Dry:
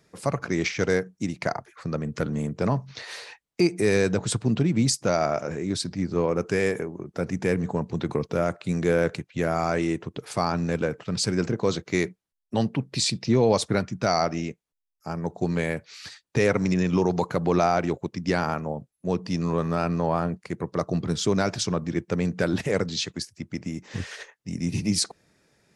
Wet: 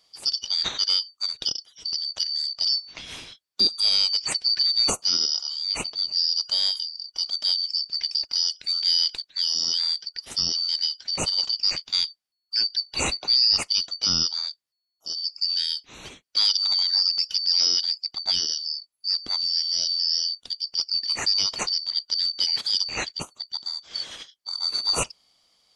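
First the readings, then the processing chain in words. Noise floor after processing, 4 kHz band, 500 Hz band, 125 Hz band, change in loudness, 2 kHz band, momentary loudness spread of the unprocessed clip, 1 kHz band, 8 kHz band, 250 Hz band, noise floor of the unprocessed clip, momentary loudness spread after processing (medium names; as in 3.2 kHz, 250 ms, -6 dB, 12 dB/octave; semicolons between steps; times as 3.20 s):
-79 dBFS, +15.5 dB, -19.0 dB, -20.0 dB, +3.5 dB, -7.0 dB, 11 LU, -11.0 dB, +3.0 dB, -20.0 dB, -79 dBFS, 11 LU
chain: four frequency bands reordered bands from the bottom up 4321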